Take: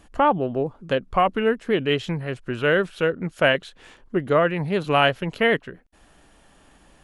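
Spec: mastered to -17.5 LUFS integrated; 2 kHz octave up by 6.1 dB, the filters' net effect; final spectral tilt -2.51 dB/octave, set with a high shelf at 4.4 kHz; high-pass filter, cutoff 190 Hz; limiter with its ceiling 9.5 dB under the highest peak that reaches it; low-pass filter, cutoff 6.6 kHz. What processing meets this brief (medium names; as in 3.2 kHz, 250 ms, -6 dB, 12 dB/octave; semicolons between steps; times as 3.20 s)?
high-pass 190 Hz; low-pass 6.6 kHz; peaking EQ 2 kHz +8.5 dB; treble shelf 4.4 kHz -3.5 dB; trim +5.5 dB; peak limiter -3.5 dBFS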